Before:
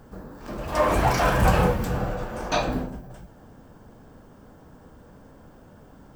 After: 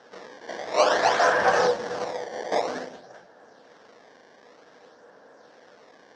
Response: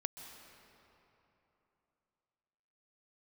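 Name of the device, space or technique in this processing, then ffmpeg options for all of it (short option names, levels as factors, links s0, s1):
circuit-bent sampling toy: -filter_complex "[0:a]acrusher=samples=19:mix=1:aa=0.000001:lfo=1:lforange=30.4:lforate=0.53,highpass=460,equalizer=f=480:t=q:w=4:g=6,equalizer=f=680:t=q:w=4:g=4,equalizer=f=1700:t=q:w=4:g=8,equalizer=f=2500:t=q:w=4:g=-6,equalizer=f=5600:t=q:w=4:g=6,lowpass=f=5700:w=0.5412,lowpass=f=5700:w=1.3066,asettb=1/sr,asplit=3[s0][s1][s2];[s0]atrim=end=1.674[s3];[s1]atrim=start=1.67:end=2.95,asetpts=PTS-STARTPTS,afade=t=in:d=0.004:c=qsin,afade=t=out:st=1.276:d=0.004:c=qsin,equalizer=f=2600:w=0.62:g=-5.5[s4];[s2]atrim=start=2.946[s5];[s3][s4]acrossfade=d=0.004:c1=hsin:c2=qsin[s6];[s6][s5]acrossfade=d=0.004:c1=qsin:c2=hsin"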